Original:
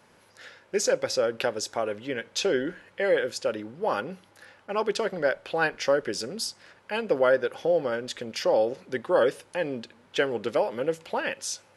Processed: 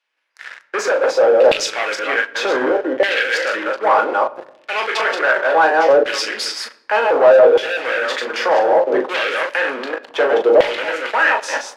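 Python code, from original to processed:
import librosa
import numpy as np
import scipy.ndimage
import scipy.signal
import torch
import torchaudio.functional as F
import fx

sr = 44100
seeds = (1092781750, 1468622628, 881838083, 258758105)

p1 = fx.reverse_delay(x, sr, ms=163, wet_db=-4.5)
p2 = fx.level_steps(p1, sr, step_db=19)
p3 = p1 + F.gain(torch.from_numpy(p2), -2.5).numpy()
p4 = scipy.signal.sosfilt(scipy.signal.butter(12, 230.0, 'highpass', fs=sr, output='sos'), p3)
p5 = fx.room_early_taps(p4, sr, ms=(19, 38), db=(-9.0, -7.0))
p6 = fx.leveller(p5, sr, passes=5)
p7 = fx.filter_lfo_bandpass(p6, sr, shape='saw_down', hz=0.66, low_hz=540.0, high_hz=3000.0, q=1.6)
y = fx.room_shoebox(p7, sr, seeds[0], volume_m3=3200.0, walls='furnished', distance_m=0.61)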